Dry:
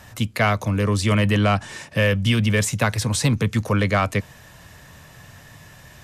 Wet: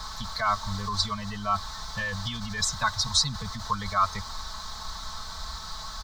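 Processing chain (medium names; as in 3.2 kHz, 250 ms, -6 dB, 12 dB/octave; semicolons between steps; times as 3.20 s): expander on every frequency bin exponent 2; added noise pink -40 dBFS; distance through air 190 m; comb 4.6 ms, depth 89%; in parallel at +2 dB: compressor with a negative ratio -24 dBFS, ratio -0.5; on the sum: FFT filter 120 Hz 0 dB, 170 Hz -12 dB, 390 Hz -22 dB, 1.1 kHz +7 dB, 2.7 kHz -14 dB, 3.9 kHz +12 dB; trim -7 dB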